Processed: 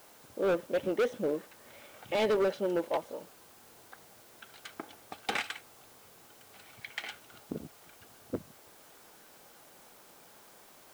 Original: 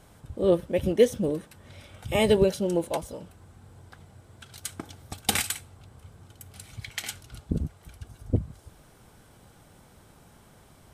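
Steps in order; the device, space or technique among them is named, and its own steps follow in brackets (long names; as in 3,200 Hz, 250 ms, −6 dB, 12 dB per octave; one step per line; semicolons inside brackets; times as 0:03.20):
aircraft radio (band-pass filter 370–2,600 Hz; hard clipping −24 dBFS, distortion −7 dB; white noise bed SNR 22 dB)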